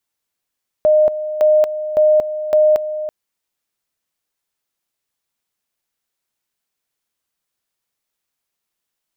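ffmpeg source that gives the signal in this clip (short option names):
-f lavfi -i "aevalsrc='pow(10,(-8.5-12*gte(mod(t,0.56),0.23))/20)*sin(2*PI*613*t)':d=2.24:s=44100"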